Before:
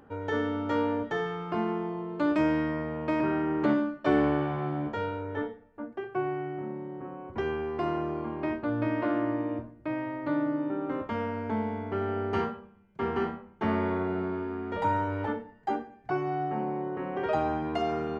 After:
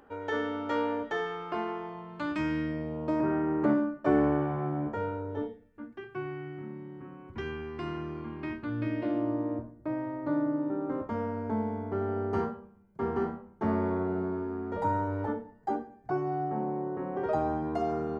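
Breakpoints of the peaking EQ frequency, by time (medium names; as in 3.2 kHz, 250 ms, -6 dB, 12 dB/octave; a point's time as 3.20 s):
peaking EQ -14 dB 1.4 oct
1.47 s 130 Hz
2.49 s 630 Hz
3.32 s 3.6 kHz
5.12 s 3.6 kHz
5.84 s 630 Hz
8.71 s 630 Hz
9.50 s 2.8 kHz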